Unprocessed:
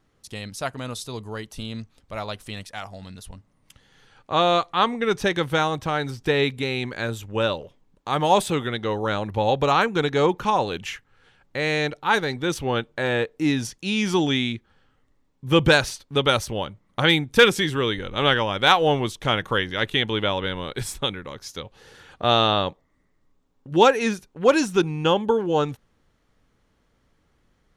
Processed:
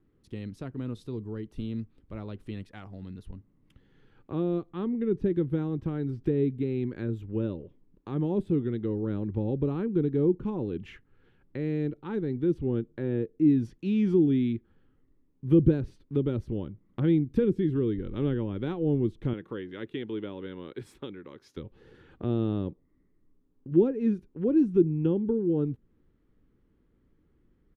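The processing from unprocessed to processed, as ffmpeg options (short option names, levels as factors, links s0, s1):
-filter_complex "[0:a]asettb=1/sr,asplit=3[s0][s1][s2];[s0]atrim=end=19.334[s3];[s1]atrim=start=19.33:end=21.57,asetpts=PTS-STARTPTS,afade=t=in:d=0.004:c=qsin,afade=t=out:st=2.236:d=0.004:c=qsin,highpass=f=510:p=1[s4];[s2]atrim=start=21.566[s5];[s3][s4]acrossfade=d=0.004:c1=hsin:c2=qsin[s6];[s6][s5]acrossfade=d=0.004:c1=qsin:c2=hsin,firequalizer=gain_entry='entry(100,0);entry(350,12);entry(650,-5);entry(6000,-25)':delay=0.05:min_phase=1,acrossover=split=440[s7][s8];[s8]acompressor=threshold=0.0126:ratio=5[s9];[s7][s9]amix=inputs=2:normalize=0,equalizer=f=490:w=0.51:g=-9.5"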